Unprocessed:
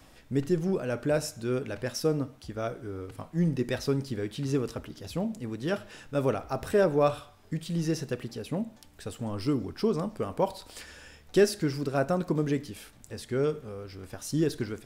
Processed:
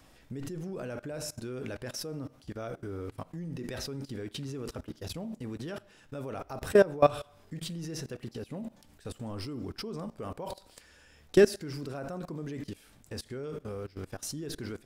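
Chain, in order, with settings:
four-comb reverb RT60 0.7 s, combs from 32 ms, DRR 19.5 dB
output level in coarse steps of 21 dB
level +4.5 dB

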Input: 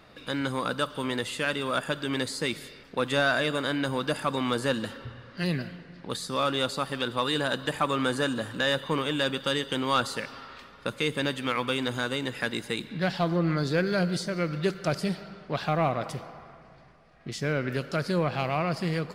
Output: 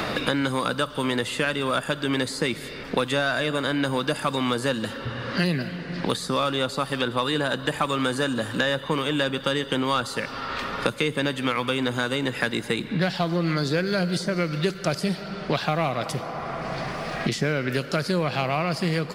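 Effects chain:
multiband upward and downward compressor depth 100%
level +2.5 dB

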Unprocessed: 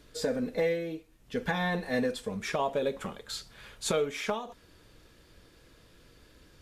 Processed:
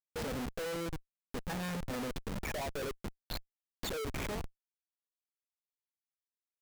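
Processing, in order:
0:02.45–0:04.05: spectral envelope exaggerated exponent 3
comparator with hysteresis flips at −32.5 dBFS
level −3 dB

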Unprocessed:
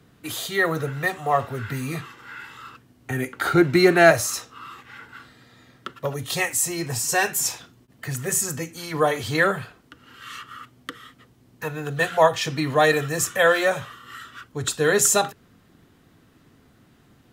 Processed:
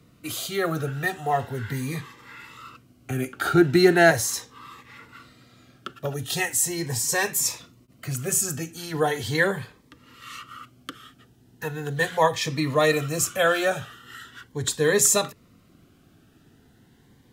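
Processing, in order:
phaser whose notches keep moving one way rising 0.39 Hz

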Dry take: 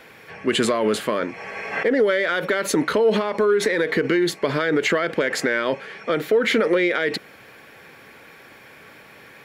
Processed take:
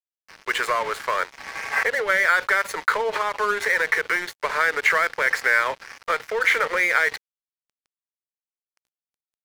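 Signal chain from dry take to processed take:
Butterworth high-pass 430 Hz 36 dB per octave
flat-topped bell 1,400 Hz +11 dB
dead-zone distortion −27 dBFS
level −4 dB

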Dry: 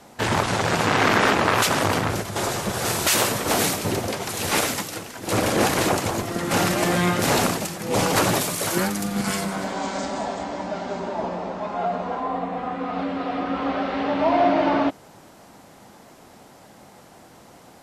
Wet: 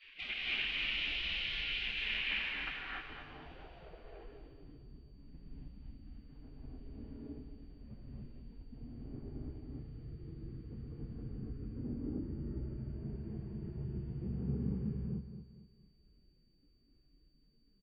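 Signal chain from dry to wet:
gate on every frequency bin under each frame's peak −20 dB weak
drawn EQ curve 210 Hz 0 dB, 1,200 Hz −11 dB, 3,000 Hz +2 dB, 6,700 Hz −13 dB, 10,000 Hz −2 dB
downward compressor 4 to 1, threshold −47 dBFS, peak gain reduction 14 dB
low-pass filter sweep 2,400 Hz → 240 Hz, 0:02.18–0:04.74
steady tone 4,600 Hz −75 dBFS
high-frequency loss of the air 170 metres
repeating echo 228 ms, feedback 37%, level −10 dB
reverb whose tail is shaped and stops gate 330 ms rising, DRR −5 dB
level +7 dB

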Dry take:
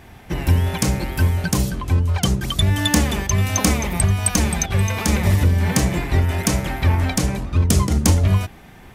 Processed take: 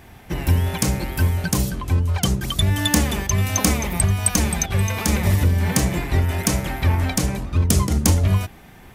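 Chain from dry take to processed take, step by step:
high-shelf EQ 11,000 Hz +6.5 dB
level −1.5 dB

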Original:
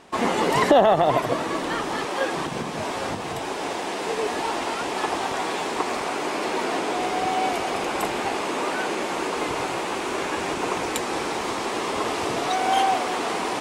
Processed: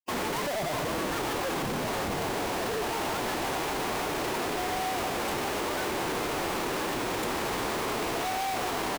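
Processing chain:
comparator with hysteresis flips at −32.5 dBFS
single-tap delay 196 ms −17.5 dB
phase-vocoder stretch with locked phases 0.66×
level −4.5 dB

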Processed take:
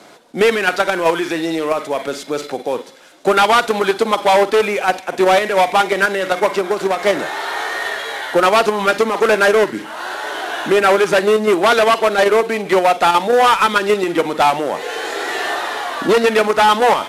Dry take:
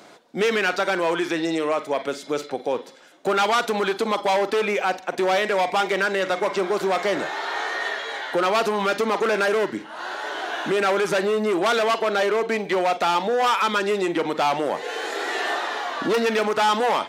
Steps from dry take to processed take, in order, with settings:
variable-slope delta modulation 64 kbit/s
in parallel at +1.5 dB: output level in coarse steps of 21 dB
on the sum: delay with a high-pass on its return 338 ms, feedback 60%, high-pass 2,100 Hz, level −20 dB
0:06.55–0:07.03: downward compressor, threshold −16 dBFS, peak gain reduction 5 dB
level +3 dB

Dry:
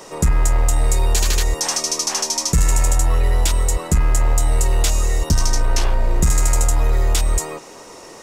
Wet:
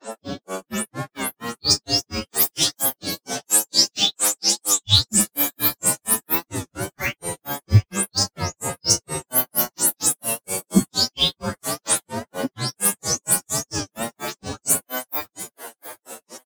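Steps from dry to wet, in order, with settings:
every frequency bin delayed by itself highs late, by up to 146 ms
high-pass filter 170 Hz 24 dB per octave
bass and treble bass +12 dB, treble +9 dB
granular cloud 80 ms, grains 8.6 per second, pitch spread up and down by 12 semitones
on a send: repeating echo 352 ms, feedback 21%, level −16.5 dB
on the sum: phase-vocoder stretch with locked phases 2×
wow of a warped record 33 1/3 rpm, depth 160 cents
level +2 dB

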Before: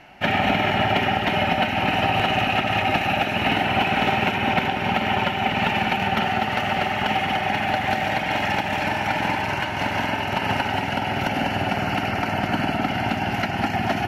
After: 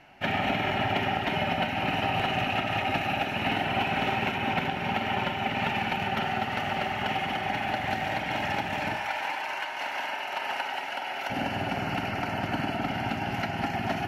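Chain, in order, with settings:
0:08.96–0:11.30: high-pass filter 630 Hz 12 dB per octave
convolution reverb RT60 0.55 s, pre-delay 7 ms, DRR 10 dB
level −7 dB

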